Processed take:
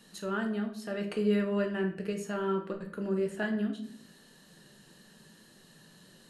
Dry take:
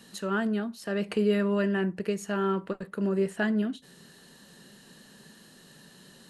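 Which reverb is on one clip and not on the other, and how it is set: shoebox room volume 94 m³, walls mixed, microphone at 0.52 m; gain -5.5 dB

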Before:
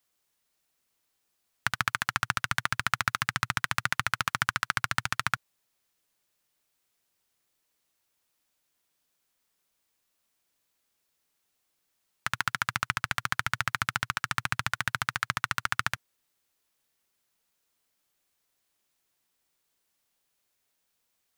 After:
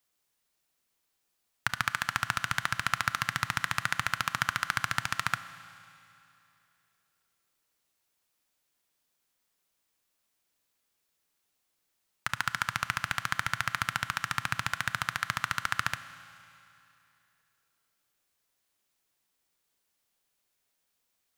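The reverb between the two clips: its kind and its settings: Schroeder reverb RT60 2.8 s, combs from 26 ms, DRR 13 dB; gain -1.5 dB

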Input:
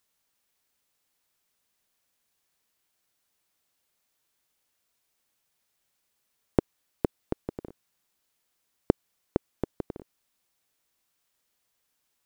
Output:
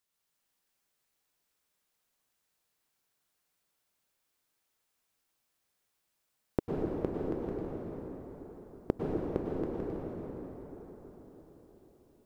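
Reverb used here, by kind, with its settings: plate-style reverb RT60 5 s, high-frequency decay 0.55×, pre-delay 90 ms, DRR -4.5 dB; gain -8 dB

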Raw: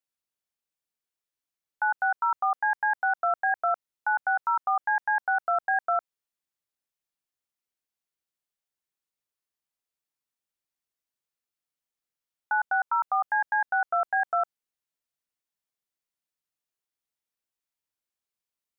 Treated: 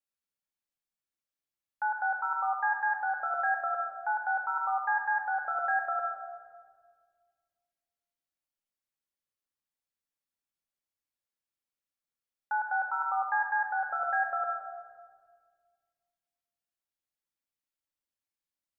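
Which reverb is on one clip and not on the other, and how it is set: shoebox room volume 2400 m³, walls mixed, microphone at 2.3 m; gain -7.5 dB

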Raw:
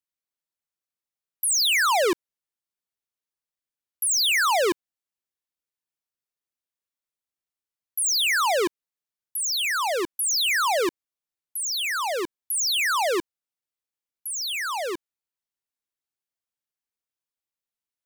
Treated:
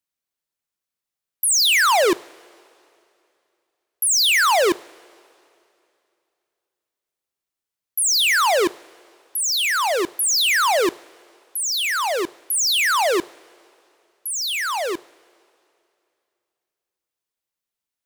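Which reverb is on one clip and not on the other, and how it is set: two-slope reverb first 0.5 s, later 2.7 s, from -15 dB, DRR 18 dB; gain +4.5 dB

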